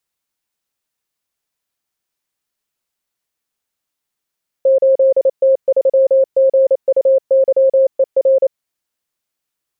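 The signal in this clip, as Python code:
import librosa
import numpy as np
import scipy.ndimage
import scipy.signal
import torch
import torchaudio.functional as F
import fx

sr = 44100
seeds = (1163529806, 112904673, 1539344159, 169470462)

y = fx.morse(sr, text='8T3GUYER', wpm=28, hz=534.0, level_db=-7.5)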